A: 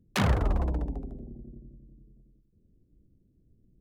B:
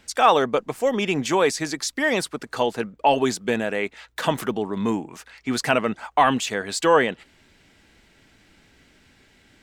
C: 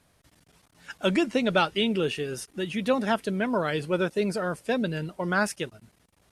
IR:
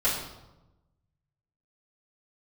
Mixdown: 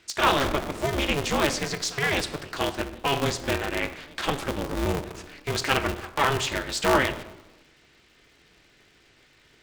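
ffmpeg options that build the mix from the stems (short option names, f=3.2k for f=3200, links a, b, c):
-filter_complex "[0:a]adelay=250,volume=-1.5dB[a];[1:a]bandreject=f=720:w=12,volume=-0.5dB,asplit=2[b][c];[c]volume=-18dB[d];[2:a]adelay=350,volume=-17dB[e];[3:a]atrim=start_sample=2205[f];[d][f]afir=irnorm=-1:irlink=0[g];[a][b][e][g]amix=inputs=4:normalize=0,highpass=140,lowpass=6.7k,equalizer=f=670:t=o:w=1.9:g=-8,aeval=exprs='val(0)*sgn(sin(2*PI*140*n/s))':c=same"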